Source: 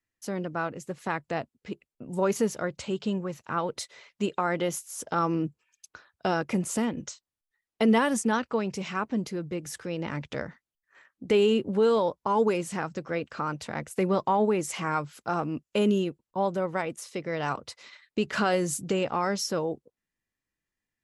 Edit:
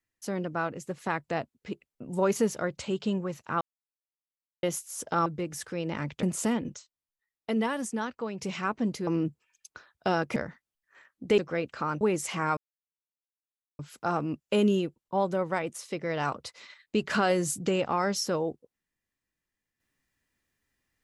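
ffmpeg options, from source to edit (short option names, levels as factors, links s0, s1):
-filter_complex "[0:a]asplit=12[s0][s1][s2][s3][s4][s5][s6][s7][s8][s9][s10][s11];[s0]atrim=end=3.61,asetpts=PTS-STARTPTS,afade=t=out:st=3.606:d=0.004:c=hsin[s12];[s1]atrim=start=3.61:end=4.63,asetpts=PTS-STARTPTS,volume=0[s13];[s2]atrim=start=4.63:end=5.262,asetpts=PTS-STARTPTS,afade=t=in:d=0.004:c=hsin[s14];[s3]atrim=start=9.388:end=10.362[s15];[s4]atrim=start=6.548:end=7.062[s16];[s5]atrim=start=7.058:end=8.732,asetpts=PTS-STARTPTS,volume=0.473[s17];[s6]atrim=start=8.728:end=9.392[s18];[s7]atrim=start=5.258:end=6.552[s19];[s8]atrim=start=10.358:end=11.382[s20];[s9]atrim=start=12.958:end=13.592[s21];[s10]atrim=start=14.458:end=15.02,asetpts=PTS-STARTPTS,afade=t=out:st=0.558:d=0.004:c=hsin,apad=pad_dur=1.22[s22];[s11]atrim=start=15.02,asetpts=PTS-STARTPTS,afade=t=in:d=0.004:c=hsin[s23];[s12][s13][s14]concat=n=3:v=0:a=1[s24];[s24][s15]acrossfade=d=0.004:c1=hsin:c2=hsin[s25];[s25][s16]acrossfade=d=0.004:c1=hsin:c2=hsin[s26];[s26][s17]acrossfade=d=0.004:c1=hsin:c2=hsin[s27];[s27][s18]acrossfade=d=0.004:c1=hsin:c2=hsin[s28];[s28][s19]acrossfade=d=0.004:c1=hsin:c2=hsin[s29];[s29][s20]acrossfade=d=0.004:c1=hsin:c2=hsin[s30];[s30][s21]acrossfade=d=0.004:c1=hsin:c2=hsin[s31];[s22][s23]concat=n=2:v=0:a=1[s32];[s31][s32]acrossfade=d=0.004:c1=hsin:c2=hsin"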